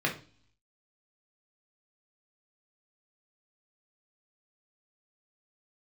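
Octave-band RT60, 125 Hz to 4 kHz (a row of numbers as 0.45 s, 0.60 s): 0.80 s, 0.65 s, 0.40 s, 0.40 s, 0.40 s, 0.60 s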